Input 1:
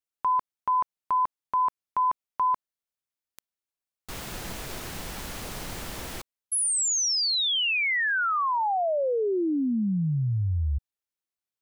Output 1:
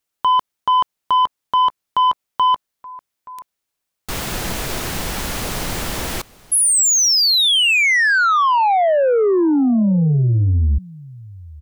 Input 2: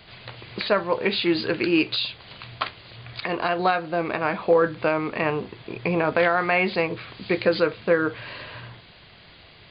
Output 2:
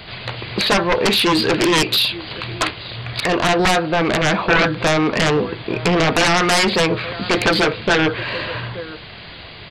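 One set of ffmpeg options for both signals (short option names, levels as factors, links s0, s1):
-af "aecho=1:1:876:0.0668,aeval=exprs='0.422*(cos(1*acos(clip(val(0)/0.422,-1,1)))-cos(1*PI/2))+0.0211*(cos(2*acos(clip(val(0)/0.422,-1,1)))-cos(2*PI/2))+0.15*(cos(3*acos(clip(val(0)/0.422,-1,1)))-cos(3*PI/2))+0.211*(cos(7*acos(clip(val(0)/0.422,-1,1)))-cos(7*PI/2))':c=same,volume=1.19"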